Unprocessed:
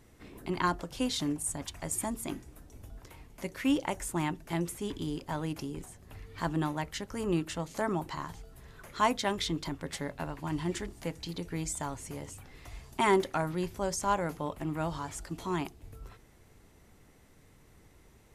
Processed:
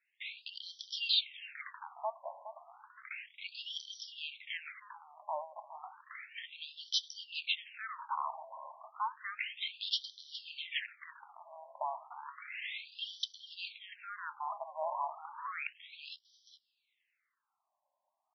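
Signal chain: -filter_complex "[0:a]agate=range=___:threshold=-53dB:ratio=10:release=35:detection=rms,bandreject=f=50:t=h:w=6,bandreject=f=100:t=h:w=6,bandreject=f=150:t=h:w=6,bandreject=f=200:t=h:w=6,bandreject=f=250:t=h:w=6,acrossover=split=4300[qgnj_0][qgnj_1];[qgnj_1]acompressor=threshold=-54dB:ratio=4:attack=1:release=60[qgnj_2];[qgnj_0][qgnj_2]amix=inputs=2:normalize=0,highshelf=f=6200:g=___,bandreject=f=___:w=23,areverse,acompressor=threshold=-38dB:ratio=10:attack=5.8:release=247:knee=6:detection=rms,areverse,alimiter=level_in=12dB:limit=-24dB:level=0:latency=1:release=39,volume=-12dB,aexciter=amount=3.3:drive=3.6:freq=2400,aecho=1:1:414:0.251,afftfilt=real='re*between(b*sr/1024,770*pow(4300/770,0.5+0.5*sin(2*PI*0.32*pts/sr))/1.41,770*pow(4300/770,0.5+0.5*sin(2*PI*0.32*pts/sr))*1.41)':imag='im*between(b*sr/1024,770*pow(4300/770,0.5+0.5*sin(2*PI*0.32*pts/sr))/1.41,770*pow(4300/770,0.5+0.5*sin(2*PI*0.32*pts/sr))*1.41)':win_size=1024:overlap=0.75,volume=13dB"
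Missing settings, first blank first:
-26dB, -4, 3000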